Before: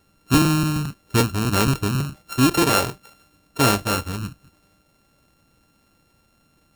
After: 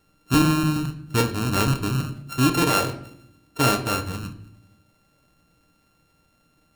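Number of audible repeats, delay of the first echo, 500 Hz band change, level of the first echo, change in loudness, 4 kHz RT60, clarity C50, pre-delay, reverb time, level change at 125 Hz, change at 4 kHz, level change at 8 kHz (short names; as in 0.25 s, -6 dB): none, none, -2.5 dB, none, -2.0 dB, 0.55 s, 12.0 dB, 7 ms, 0.70 s, -1.5 dB, -2.5 dB, -3.5 dB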